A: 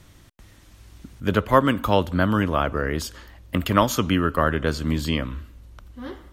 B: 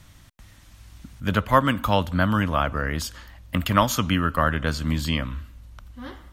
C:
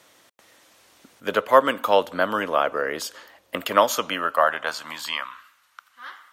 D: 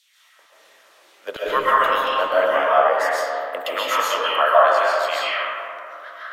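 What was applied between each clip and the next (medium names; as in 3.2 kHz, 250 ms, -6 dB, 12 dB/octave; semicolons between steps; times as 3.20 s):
peaking EQ 390 Hz -10 dB 0.83 oct; trim +1 dB
high-pass sweep 450 Hz -> 1.3 kHz, 3.80–5.61 s
LFO high-pass saw down 2.2 Hz 370–3800 Hz; algorithmic reverb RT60 2.9 s, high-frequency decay 0.3×, pre-delay 95 ms, DRR -9 dB; trim -7 dB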